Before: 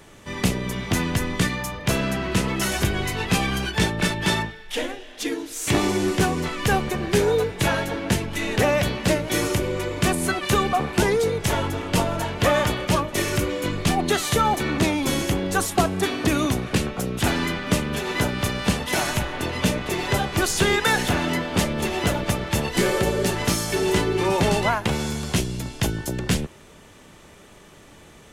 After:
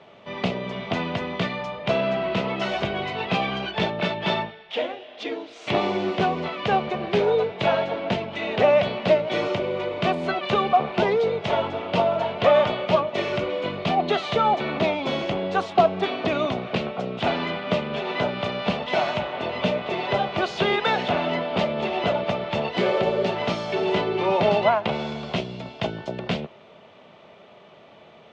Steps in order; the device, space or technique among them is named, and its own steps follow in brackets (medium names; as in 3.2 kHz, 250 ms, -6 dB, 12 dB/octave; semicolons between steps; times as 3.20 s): kitchen radio (cabinet simulation 190–3700 Hz, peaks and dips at 300 Hz -9 dB, 650 Hz +9 dB, 1.7 kHz -8 dB)